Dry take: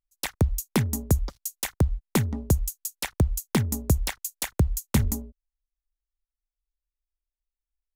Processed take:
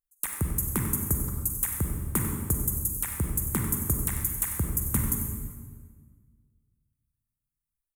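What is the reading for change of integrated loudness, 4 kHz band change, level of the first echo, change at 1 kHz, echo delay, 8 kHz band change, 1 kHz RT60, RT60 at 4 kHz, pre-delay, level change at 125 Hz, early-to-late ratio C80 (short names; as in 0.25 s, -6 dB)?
-0.5 dB, -14.0 dB, -11.5 dB, -4.0 dB, 95 ms, +3.5 dB, 1.5 s, 1.3 s, 37 ms, -4.5 dB, 4.0 dB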